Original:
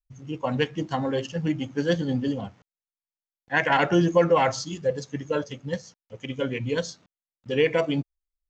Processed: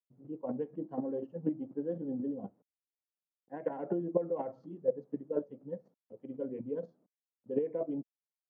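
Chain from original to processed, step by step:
downward compressor 4 to 1, threshold −22 dBFS, peak gain reduction 7.5 dB
square-wave tremolo 4.1 Hz, depth 60%, duty 10%
flat-topped band-pass 360 Hz, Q 0.86

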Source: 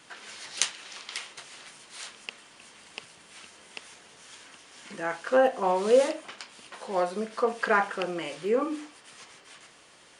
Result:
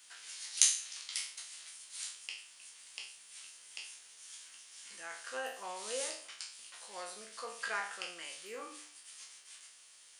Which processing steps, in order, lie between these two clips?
peak hold with a decay on every bin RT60 0.51 s
first-order pre-emphasis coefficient 0.97

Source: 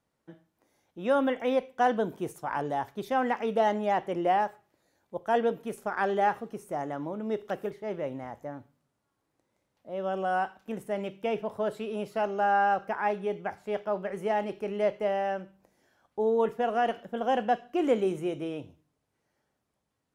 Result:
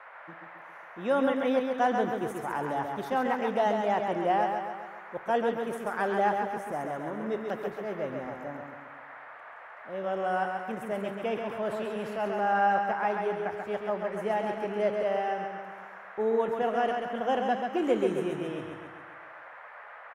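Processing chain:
noise in a band 540–1,900 Hz −47 dBFS
repeating echo 135 ms, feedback 54%, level −5 dB
0:11.34–0:12.74: transient designer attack −4 dB, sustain +3 dB
level −1.5 dB

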